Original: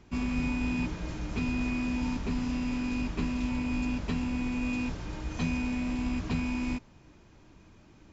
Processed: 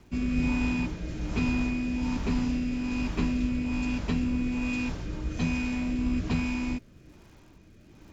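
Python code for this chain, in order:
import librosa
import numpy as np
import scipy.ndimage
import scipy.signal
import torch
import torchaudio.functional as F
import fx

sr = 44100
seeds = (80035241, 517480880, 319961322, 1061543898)

y = fx.dmg_crackle(x, sr, seeds[0], per_s=360.0, level_db=-56.0)
y = fx.rotary(y, sr, hz=1.2)
y = F.gain(torch.from_numpy(y), 4.0).numpy()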